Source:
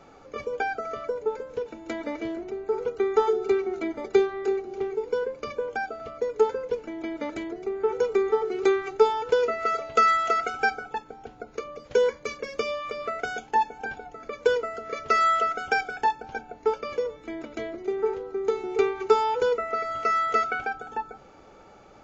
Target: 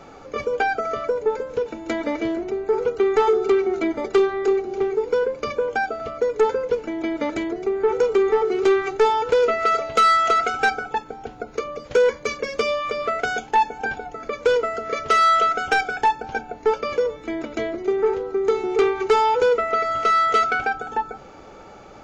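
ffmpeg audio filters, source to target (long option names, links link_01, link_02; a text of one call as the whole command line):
ffmpeg -i in.wav -af "asoftclip=type=tanh:threshold=-19.5dB,volume=8dB" out.wav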